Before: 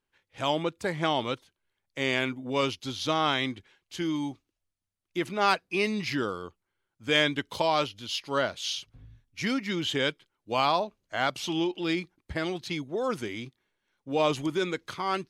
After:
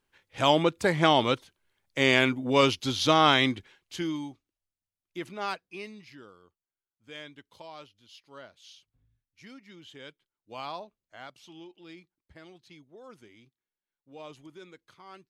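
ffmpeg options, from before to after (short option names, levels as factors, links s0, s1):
-af "volume=4.47,afade=t=out:st=3.48:d=0.81:silence=0.237137,afade=t=out:st=5.24:d=0.83:silence=0.223872,afade=t=in:st=9.95:d=0.79:silence=0.421697,afade=t=out:st=10.74:d=0.63:silence=0.446684"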